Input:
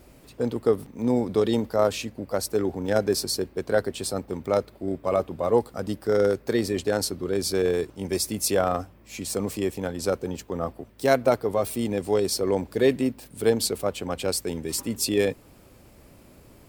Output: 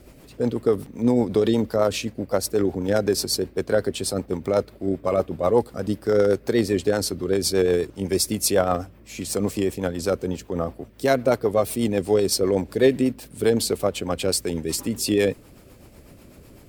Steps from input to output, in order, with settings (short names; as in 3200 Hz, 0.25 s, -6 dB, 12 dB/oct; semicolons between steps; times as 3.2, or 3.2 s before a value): in parallel at -1 dB: limiter -14.5 dBFS, peak gain reduction 8.5 dB; on the sum: rotary speaker horn 8 Hz